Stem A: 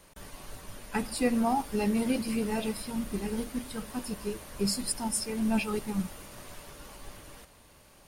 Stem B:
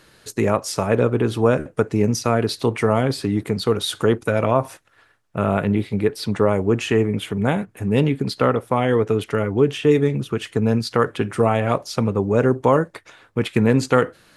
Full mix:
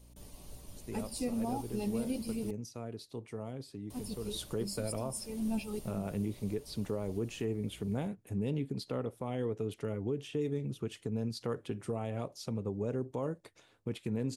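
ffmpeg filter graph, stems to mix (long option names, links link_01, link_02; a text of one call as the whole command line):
ffmpeg -i stem1.wav -i stem2.wav -filter_complex "[0:a]equalizer=frequency=1600:width_type=o:width=0.77:gain=-4.5,aeval=exprs='val(0)+0.00282*(sin(2*PI*60*n/s)+sin(2*PI*2*60*n/s)/2+sin(2*PI*3*60*n/s)/3+sin(2*PI*4*60*n/s)/4+sin(2*PI*5*60*n/s)/5)':channel_layout=same,volume=-5dB,asplit=3[link_01][link_02][link_03];[link_01]atrim=end=2.51,asetpts=PTS-STARTPTS,afade=type=out:start_time=2.506:duration=0.004:curve=hsin[link_04];[link_02]atrim=start=2.51:end=3.9,asetpts=PTS-STARTPTS,volume=0[link_05];[link_03]atrim=start=3.9,asetpts=PTS-STARTPTS,afade=type=in:duration=0.004:curve=hsin[link_06];[link_04][link_05][link_06]concat=n=3:v=0:a=1[link_07];[1:a]adelay=500,volume=-11dB,afade=type=in:start_time=4.23:duration=0.21:silence=0.298538[link_08];[link_07][link_08]amix=inputs=2:normalize=0,equalizer=frequency=1500:width=0.76:gain=-10.5,alimiter=level_in=1dB:limit=-24dB:level=0:latency=1:release=260,volume=-1dB" out.wav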